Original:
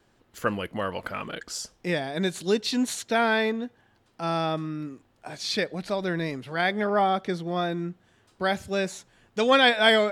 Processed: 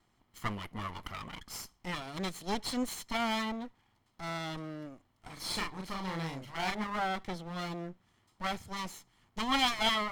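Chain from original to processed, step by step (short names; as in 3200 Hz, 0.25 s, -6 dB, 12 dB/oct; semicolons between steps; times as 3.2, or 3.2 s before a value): minimum comb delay 0.95 ms; 5.33–6.84 doubler 37 ms -3.5 dB; gain -6.5 dB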